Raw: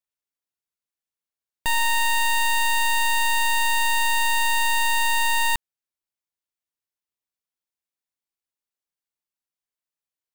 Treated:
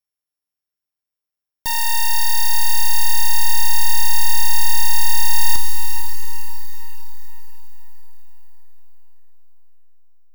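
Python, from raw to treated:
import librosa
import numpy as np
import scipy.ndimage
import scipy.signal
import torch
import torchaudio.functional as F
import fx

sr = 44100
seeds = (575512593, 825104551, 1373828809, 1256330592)

p1 = np.r_[np.sort(x[:len(x) // 8 * 8].reshape(-1, 8), axis=1).ravel(), x[len(x) // 8 * 8:]]
p2 = fx.peak_eq(p1, sr, hz=6700.0, db=-4.0, octaves=2.8)
p3 = p2 + fx.echo_diffused(p2, sr, ms=497, feedback_pct=44, wet_db=-9.0, dry=0)
p4 = fx.rev_schroeder(p3, sr, rt60_s=2.8, comb_ms=30, drr_db=8.0)
p5 = fx.rider(p4, sr, range_db=3, speed_s=0.5)
p6 = p4 + (p5 * 10.0 ** (1.5 / 20.0))
p7 = fx.high_shelf(p6, sr, hz=8700.0, db=9.0)
y = p7 * 10.0 ** (-6.5 / 20.0)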